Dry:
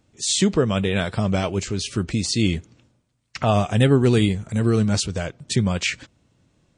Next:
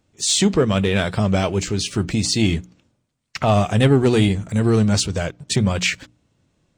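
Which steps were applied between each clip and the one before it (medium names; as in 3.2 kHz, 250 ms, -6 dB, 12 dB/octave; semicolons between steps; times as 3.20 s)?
waveshaping leveller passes 1; hum notches 60/120/180/240/300 Hz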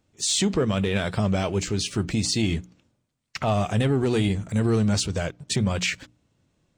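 peak limiter -11.5 dBFS, peak gain reduction 6 dB; trim -3.5 dB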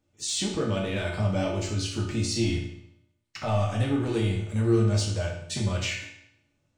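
reverberation RT60 0.75 s, pre-delay 3 ms, DRR -3 dB; trim -8.5 dB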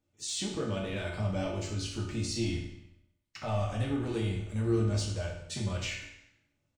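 frequency-shifting echo 96 ms, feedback 49%, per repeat -43 Hz, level -17 dB; trim -6 dB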